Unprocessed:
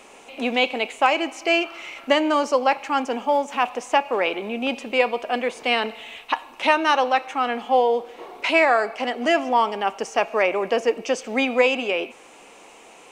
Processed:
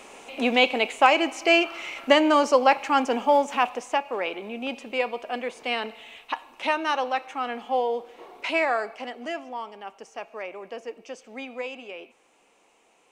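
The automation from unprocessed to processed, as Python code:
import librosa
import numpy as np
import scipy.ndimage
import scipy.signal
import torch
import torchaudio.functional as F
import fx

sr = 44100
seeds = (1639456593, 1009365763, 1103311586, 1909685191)

y = fx.gain(x, sr, db=fx.line((3.47, 1.0), (4.02, -6.5), (8.77, -6.5), (9.55, -15.5)))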